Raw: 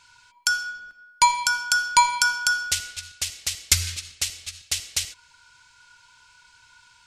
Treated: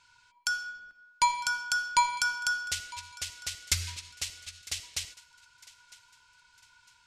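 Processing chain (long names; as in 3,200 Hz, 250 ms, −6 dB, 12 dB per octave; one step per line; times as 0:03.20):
high-shelf EQ 7,700 Hz −6 dB
feedback echo with a high-pass in the loop 954 ms, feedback 35%, high-pass 420 Hz, level −20 dB
level −7 dB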